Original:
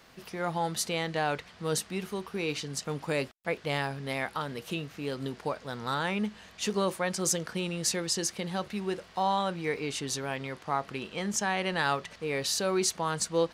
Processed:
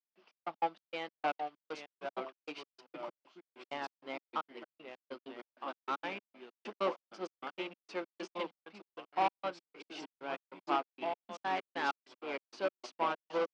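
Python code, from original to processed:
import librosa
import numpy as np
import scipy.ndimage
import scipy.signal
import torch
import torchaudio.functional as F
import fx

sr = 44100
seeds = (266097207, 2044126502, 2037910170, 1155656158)

y = np.repeat(scipy.signal.resample_poly(x, 1, 3), 3)[:len(x)]
y = fx.echo_pitch(y, sr, ms=729, semitones=-2, count=3, db_per_echo=-6.0)
y = 10.0 ** (-29.5 / 20.0) * np.tanh(y / 10.0 ** (-29.5 / 20.0))
y = fx.step_gate(y, sr, bpm=194, pattern='..xx..x.xx', floor_db=-60.0, edge_ms=4.5)
y = fx.cabinet(y, sr, low_hz=290.0, low_slope=24, high_hz=4400.0, hz=(440.0, 1800.0, 3900.0), db=(-8, -7, -8))
y = fx.upward_expand(y, sr, threshold_db=-48.0, expansion=2.5)
y = y * 10.0 ** (7.0 / 20.0)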